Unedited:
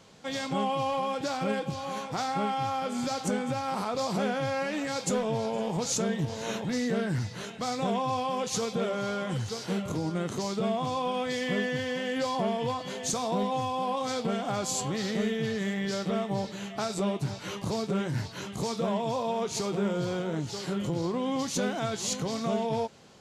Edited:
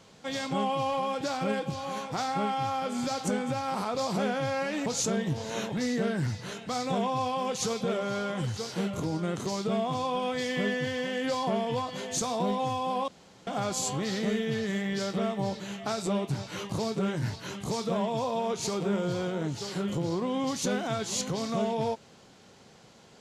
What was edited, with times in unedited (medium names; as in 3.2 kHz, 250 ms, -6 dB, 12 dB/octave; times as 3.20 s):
4.86–5.78 s: delete
14.00–14.39 s: room tone